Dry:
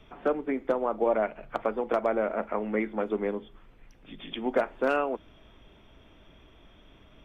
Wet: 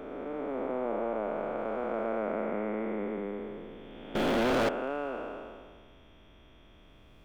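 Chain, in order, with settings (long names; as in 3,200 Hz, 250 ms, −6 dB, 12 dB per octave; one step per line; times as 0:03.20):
spectrum smeared in time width 769 ms
0:04.15–0:04.69: leveller curve on the samples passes 5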